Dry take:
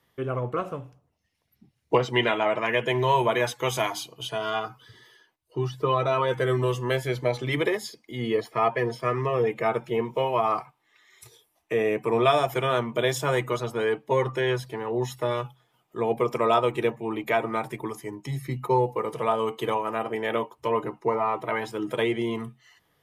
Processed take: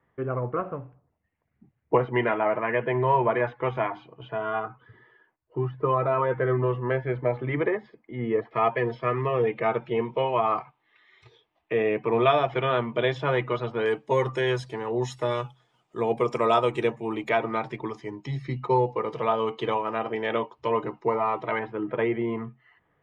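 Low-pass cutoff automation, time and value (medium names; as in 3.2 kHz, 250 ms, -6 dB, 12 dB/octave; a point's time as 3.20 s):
low-pass 24 dB/octave
2 kHz
from 8.51 s 3.5 kHz
from 13.86 s 8.2 kHz
from 17.29 s 5 kHz
from 21.59 s 2.2 kHz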